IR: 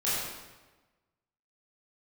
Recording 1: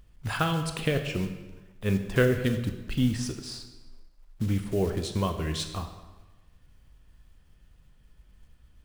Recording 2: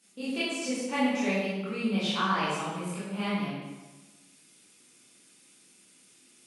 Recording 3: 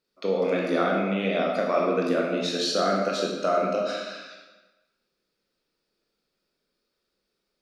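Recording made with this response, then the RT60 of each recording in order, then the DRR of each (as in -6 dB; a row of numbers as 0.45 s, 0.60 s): 2; 1.2 s, 1.2 s, 1.2 s; 6.5 dB, -11.0 dB, -2.0 dB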